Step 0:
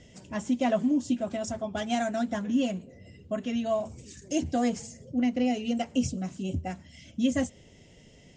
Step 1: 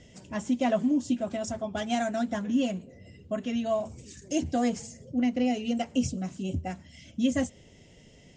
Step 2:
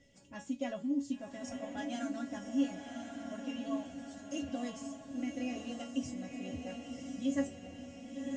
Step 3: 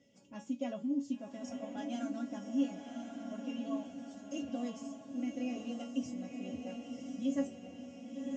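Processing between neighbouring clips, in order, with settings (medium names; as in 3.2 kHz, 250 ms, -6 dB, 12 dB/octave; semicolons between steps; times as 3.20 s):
no audible change
feedback comb 280 Hz, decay 0.2 s, harmonics all, mix 90%; echo that smears into a reverb 1062 ms, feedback 52%, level -4.5 dB
cabinet simulation 140–7100 Hz, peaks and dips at 220 Hz +6 dB, 470 Hz +3 dB, 1.8 kHz -8 dB, 4.1 kHz -5 dB; trim -2 dB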